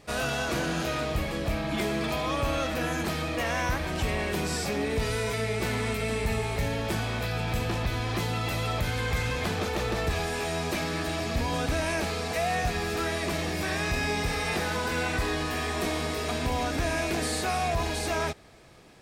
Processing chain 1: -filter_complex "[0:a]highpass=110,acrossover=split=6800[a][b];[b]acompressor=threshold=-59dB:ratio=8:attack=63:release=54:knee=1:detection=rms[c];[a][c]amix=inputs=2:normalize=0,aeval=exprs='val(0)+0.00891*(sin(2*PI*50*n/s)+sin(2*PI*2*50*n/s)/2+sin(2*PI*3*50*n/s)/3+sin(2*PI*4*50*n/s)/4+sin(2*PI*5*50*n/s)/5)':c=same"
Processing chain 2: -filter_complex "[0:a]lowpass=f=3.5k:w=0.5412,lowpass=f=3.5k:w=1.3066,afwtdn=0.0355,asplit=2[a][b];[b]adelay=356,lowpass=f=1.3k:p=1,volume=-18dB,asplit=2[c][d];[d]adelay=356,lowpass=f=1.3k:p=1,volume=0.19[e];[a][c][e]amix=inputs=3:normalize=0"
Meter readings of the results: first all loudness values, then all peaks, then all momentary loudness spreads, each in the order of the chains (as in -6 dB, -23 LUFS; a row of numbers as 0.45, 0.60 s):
-29.5, -31.0 LUFS; -16.5, -17.5 dBFS; 2, 3 LU